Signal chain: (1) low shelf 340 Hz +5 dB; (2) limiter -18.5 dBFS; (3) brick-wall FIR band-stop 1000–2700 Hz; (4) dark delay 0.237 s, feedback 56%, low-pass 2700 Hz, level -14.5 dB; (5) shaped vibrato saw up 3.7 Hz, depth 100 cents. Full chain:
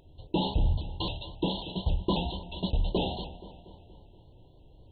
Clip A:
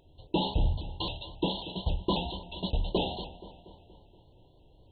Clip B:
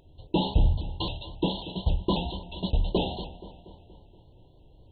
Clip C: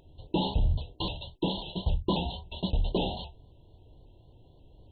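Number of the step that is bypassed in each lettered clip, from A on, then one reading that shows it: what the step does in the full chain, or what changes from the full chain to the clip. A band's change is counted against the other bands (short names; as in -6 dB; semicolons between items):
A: 1, 125 Hz band -2.5 dB; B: 2, crest factor change +2.0 dB; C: 4, momentary loudness spread change -5 LU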